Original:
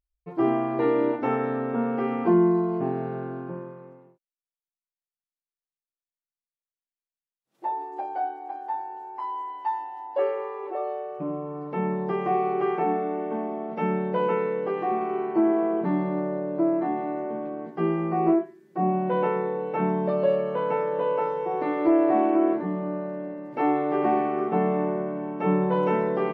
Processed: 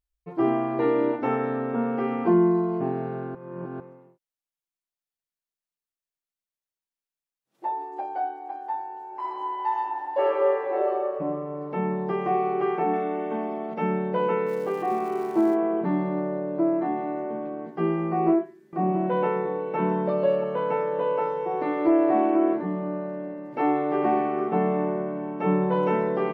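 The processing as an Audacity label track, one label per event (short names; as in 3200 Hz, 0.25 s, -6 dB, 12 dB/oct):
3.350000	3.800000	reverse
9.060000	10.880000	reverb throw, RT60 2.2 s, DRR -4.5 dB
12.930000	13.740000	high shelf 2600 Hz +11.5 dB
14.460000	15.540000	crackle 470/s -40 dBFS
18.050000	20.440000	echo 0.677 s -11 dB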